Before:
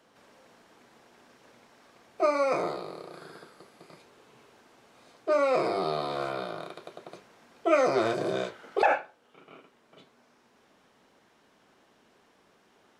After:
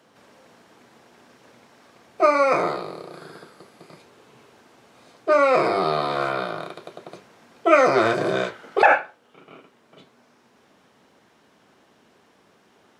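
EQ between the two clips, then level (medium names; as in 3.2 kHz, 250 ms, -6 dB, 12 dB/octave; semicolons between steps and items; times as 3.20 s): high-pass 76 Hz; dynamic bell 1.6 kHz, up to +7 dB, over -43 dBFS, Q 0.81; bass shelf 180 Hz +5 dB; +4.5 dB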